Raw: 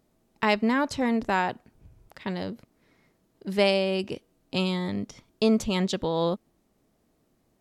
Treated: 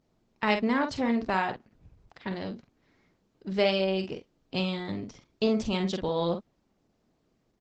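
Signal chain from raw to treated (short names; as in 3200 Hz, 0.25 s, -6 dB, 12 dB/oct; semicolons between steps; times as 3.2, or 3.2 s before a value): LPF 6300 Hz 24 dB/oct; doubler 47 ms -7 dB; gain -2.5 dB; Opus 12 kbps 48000 Hz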